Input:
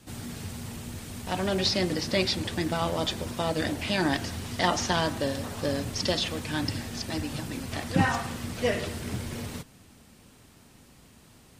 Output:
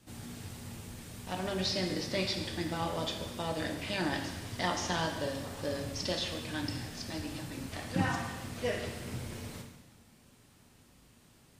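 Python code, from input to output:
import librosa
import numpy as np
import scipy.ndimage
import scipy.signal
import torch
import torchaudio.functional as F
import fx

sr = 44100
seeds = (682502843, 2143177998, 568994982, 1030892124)

y = fx.rev_plate(x, sr, seeds[0], rt60_s=1.1, hf_ratio=1.0, predelay_ms=0, drr_db=3.0)
y = y * librosa.db_to_amplitude(-8.0)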